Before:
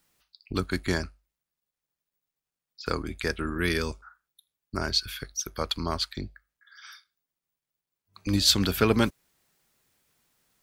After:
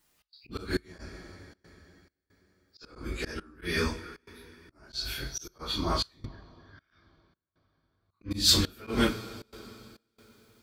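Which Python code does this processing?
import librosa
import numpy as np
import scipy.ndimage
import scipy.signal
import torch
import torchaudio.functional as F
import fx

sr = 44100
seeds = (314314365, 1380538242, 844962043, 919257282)

y = fx.phase_scramble(x, sr, seeds[0], window_ms=100)
y = fx.rev_double_slope(y, sr, seeds[1], early_s=0.37, late_s=3.6, knee_db=-18, drr_db=6.0)
y = fx.step_gate(y, sr, bpm=137, pattern='xx.xxxx..xxx', floor_db=-24.0, edge_ms=4.5)
y = fx.auto_swell(y, sr, attack_ms=171.0)
y = fx.spacing_loss(y, sr, db_at_10k=32, at=(6.25, 8.31))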